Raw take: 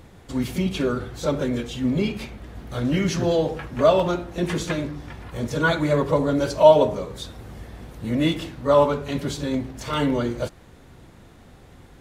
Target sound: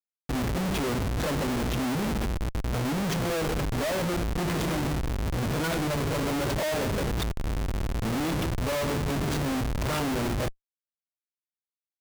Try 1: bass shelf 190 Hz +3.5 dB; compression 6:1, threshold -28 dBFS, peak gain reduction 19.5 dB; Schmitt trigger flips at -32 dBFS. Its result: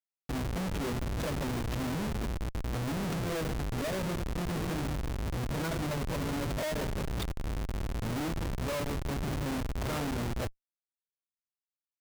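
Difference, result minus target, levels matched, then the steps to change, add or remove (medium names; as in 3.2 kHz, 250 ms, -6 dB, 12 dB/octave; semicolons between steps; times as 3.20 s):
compression: peak gain reduction +6 dB
change: compression 6:1, threshold -21 dBFS, peak gain reduction 13.5 dB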